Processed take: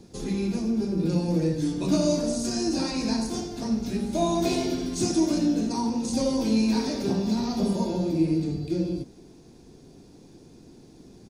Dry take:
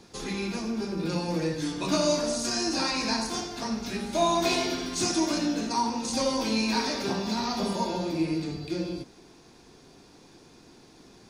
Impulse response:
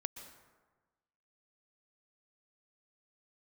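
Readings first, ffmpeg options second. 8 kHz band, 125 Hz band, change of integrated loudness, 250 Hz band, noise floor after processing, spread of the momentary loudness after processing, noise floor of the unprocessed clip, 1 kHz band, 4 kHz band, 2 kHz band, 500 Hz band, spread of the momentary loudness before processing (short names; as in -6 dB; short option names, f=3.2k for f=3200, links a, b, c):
-2.0 dB, +6.5 dB, +2.0 dB, +5.0 dB, -51 dBFS, 6 LU, -54 dBFS, -5.0 dB, -4.5 dB, -7.5 dB, +1.0 dB, 7 LU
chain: -af "firequalizer=gain_entry='entry(180,0);entry(1100,-15);entry(8000,-7)':delay=0.05:min_phase=1,volume=6.5dB"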